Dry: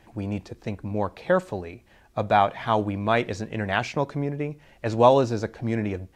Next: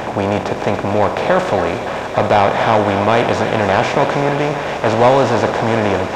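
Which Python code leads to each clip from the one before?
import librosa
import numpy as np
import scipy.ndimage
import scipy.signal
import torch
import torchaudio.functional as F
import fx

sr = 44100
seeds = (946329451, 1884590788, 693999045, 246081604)

y = fx.bin_compress(x, sr, power=0.4)
y = 10.0 ** (-8.5 / 20.0) * np.tanh(y / 10.0 ** (-8.5 / 20.0))
y = fx.echo_thinned(y, sr, ms=283, feedback_pct=84, hz=480.0, wet_db=-9)
y = y * librosa.db_to_amplitude(5.0)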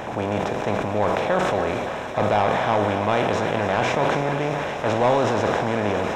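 y = fx.notch(x, sr, hz=4600.0, q=6.9)
y = fx.doubler(y, sr, ms=48.0, db=-12.0)
y = fx.sustainer(y, sr, db_per_s=20.0)
y = y * librosa.db_to_amplitude(-8.5)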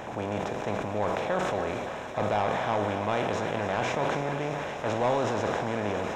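y = fx.peak_eq(x, sr, hz=6800.0, db=3.5, octaves=0.29)
y = y * librosa.db_to_amplitude(-7.0)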